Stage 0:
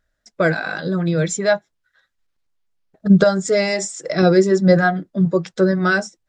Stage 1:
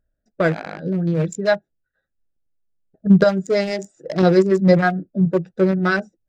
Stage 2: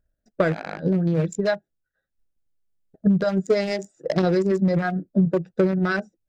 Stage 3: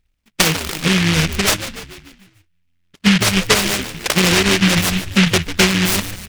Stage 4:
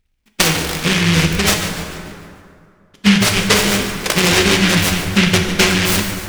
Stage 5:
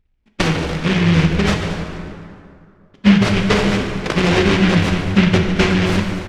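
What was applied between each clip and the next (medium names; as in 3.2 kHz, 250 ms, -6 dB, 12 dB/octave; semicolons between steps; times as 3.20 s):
local Wiener filter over 41 samples
peak limiter -14 dBFS, peak gain reduction 11 dB; transient shaper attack +6 dB, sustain -3 dB; trim -1 dB
on a send: frequency-shifting echo 146 ms, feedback 56%, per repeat -87 Hz, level -12 dB; on the sum: delay time shaken by noise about 2.3 kHz, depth 0.45 ms; trim +5.5 dB
plate-style reverb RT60 2.4 s, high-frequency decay 0.55×, DRR 3 dB
in parallel at -10 dB: decimation with a swept rate 39×, swing 100% 2.7 Hz; on the sum: tape spacing loss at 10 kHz 22 dB; delay 225 ms -14 dB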